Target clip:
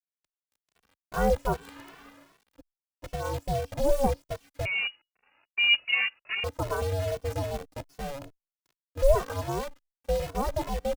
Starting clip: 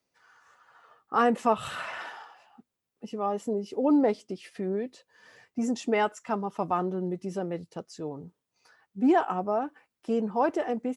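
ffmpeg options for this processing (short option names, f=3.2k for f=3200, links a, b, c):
-filter_complex "[0:a]equalizer=f=250:t=o:w=2.1:g=14.5,dynaudnorm=f=860:g=5:m=8.5dB,acrusher=bits=5:dc=4:mix=0:aa=0.000001,aeval=exprs='val(0)*sin(2*PI*280*n/s)':c=same,asettb=1/sr,asplit=3[a][b][c];[a]atrim=end=4.654[d];[b]atrim=start=4.65:end=6.44,asetpts=PTS-STARTPTS,afade=t=in:d=0.004:c=qsin,afade=t=out:st=1.786:d=0.004:c=qsin,lowpass=f=2.5k:t=q:w=0.5098,lowpass=f=2.5k:t=q:w=0.6013,lowpass=f=2.5k:t=q:w=0.9,lowpass=f=2.5k:t=q:w=2.563,afreqshift=-2900[e];[c]atrim=start=6.436[f];[d][e]acrossfade=d=0.004:c1=hsin:c2=qsin[g];[g][f]acrossfade=d=0.004:c1=qsin:c2=hsin,asplit=2[h][i];[i]adelay=2.2,afreqshift=2.5[j];[h][j]amix=inputs=2:normalize=1,volume=-5.5dB"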